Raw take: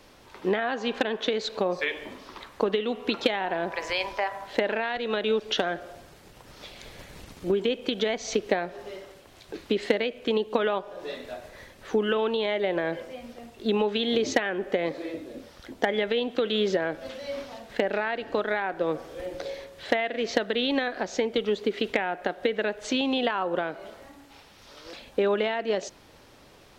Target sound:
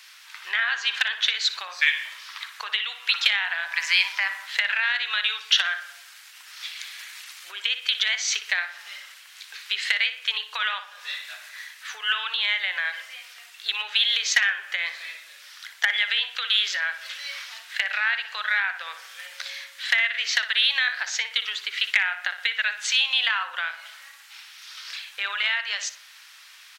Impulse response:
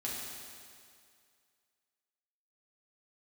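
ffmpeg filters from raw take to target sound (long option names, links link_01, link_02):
-filter_complex "[0:a]highpass=frequency=1500:width=0.5412,highpass=frequency=1500:width=1.3066,asplit=2[link_01][link_02];[link_02]asoftclip=type=tanh:threshold=-20.5dB,volume=-10dB[link_03];[link_01][link_03]amix=inputs=2:normalize=0,asplit=2[link_04][link_05];[link_05]adelay=60,lowpass=frequency=2700:poles=1,volume=-9dB,asplit=2[link_06][link_07];[link_07]adelay=60,lowpass=frequency=2700:poles=1,volume=0.47,asplit=2[link_08][link_09];[link_09]adelay=60,lowpass=frequency=2700:poles=1,volume=0.47,asplit=2[link_10][link_11];[link_11]adelay=60,lowpass=frequency=2700:poles=1,volume=0.47,asplit=2[link_12][link_13];[link_13]adelay=60,lowpass=frequency=2700:poles=1,volume=0.47[link_14];[link_04][link_06][link_08][link_10][link_12][link_14]amix=inputs=6:normalize=0,volume=8dB"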